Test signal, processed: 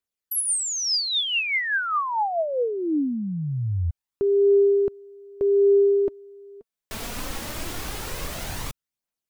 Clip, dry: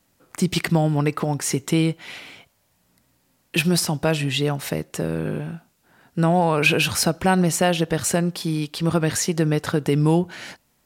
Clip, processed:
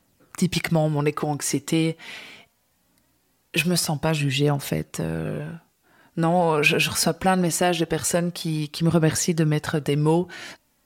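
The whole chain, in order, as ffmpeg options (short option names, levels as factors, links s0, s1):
-af "aphaser=in_gain=1:out_gain=1:delay=4.8:decay=0.37:speed=0.22:type=triangular,volume=0.841"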